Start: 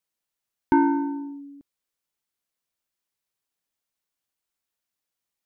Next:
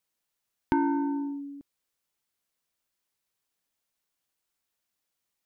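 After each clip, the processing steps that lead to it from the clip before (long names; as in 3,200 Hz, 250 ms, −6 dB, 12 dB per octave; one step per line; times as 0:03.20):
downward compressor 2.5 to 1, threshold −30 dBFS, peak gain reduction 9.5 dB
level +2.5 dB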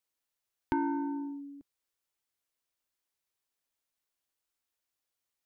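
parametric band 190 Hz −13 dB 0.29 octaves
level −4.5 dB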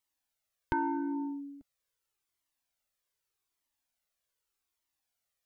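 flanger whose copies keep moving one way falling 0.83 Hz
level +5.5 dB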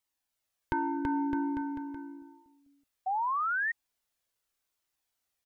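on a send: bouncing-ball delay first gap 330 ms, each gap 0.85×, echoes 5
on the sum: sound drawn into the spectrogram rise, 0:03.06–0:03.72, 740–1,900 Hz −30 dBFS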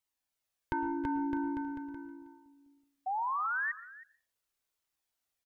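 single-tap delay 318 ms −18 dB
convolution reverb RT60 0.35 s, pre-delay 102 ms, DRR 14 dB
level −3 dB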